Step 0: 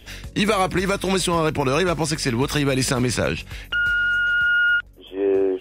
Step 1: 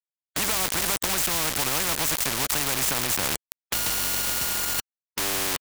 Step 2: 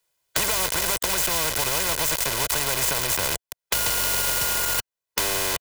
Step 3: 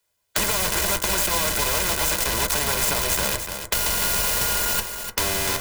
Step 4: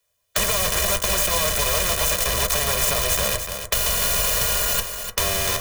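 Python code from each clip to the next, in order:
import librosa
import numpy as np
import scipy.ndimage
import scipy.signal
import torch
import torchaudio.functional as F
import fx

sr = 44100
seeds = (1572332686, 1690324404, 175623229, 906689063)

y1 = fx.curve_eq(x, sr, hz=(290.0, 450.0, 870.0, 1400.0, 3000.0, 4300.0, 7100.0, 12000.0), db=(0, -6, 5, -5, -10, -28, 4, -14))
y1 = np.where(np.abs(y1) >= 10.0 ** (-25.5 / 20.0), y1, 0.0)
y1 = fx.spectral_comp(y1, sr, ratio=4.0)
y2 = fx.peak_eq(y1, sr, hz=700.0, db=6.0, octaves=0.25)
y2 = y2 + 0.54 * np.pad(y2, (int(2.0 * sr / 1000.0), 0))[:len(y2)]
y2 = fx.band_squash(y2, sr, depth_pct=70)
y3 = fx.octave_divider(y2, sr, octaves=2, level_db=2.0)
y3 = y3 + 10.0 ** (-8.0 / 20.0) * np.pad(y3, (int(298 * sr / 1000.0), 0))[:len(y3)]
y3 = fx.rev_fdn(y3, sr, rt60_s=0.32, lf_ratio=0.85, hf_ratio=0.4, size_ms=29.0, drr_db=6.0)
y4 = y3 + 0.58 * np.pad(y3, (int(1.7 * sr / 1000.0), 0))[:len(y3)]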